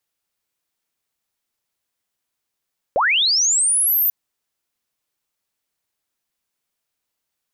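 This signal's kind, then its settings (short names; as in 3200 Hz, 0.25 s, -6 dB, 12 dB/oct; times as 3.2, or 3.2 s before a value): chirp linear 470 Hz -> 14000 Hz -14 dBFS -> -14.5 dBFS 1.14 s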